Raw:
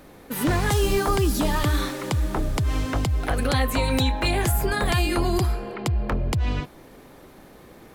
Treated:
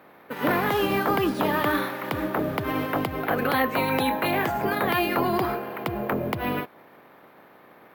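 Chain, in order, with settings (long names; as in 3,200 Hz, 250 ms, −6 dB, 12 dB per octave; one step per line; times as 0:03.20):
ceiling on every frequency bin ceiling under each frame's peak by 13 dB
in parallel at −7 dB: bit reduction 6 bits
on the sum: band-pass filter 190–2,200 Hz
bad sample-rate conversion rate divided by 3×, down none, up hold
level −2.5 dB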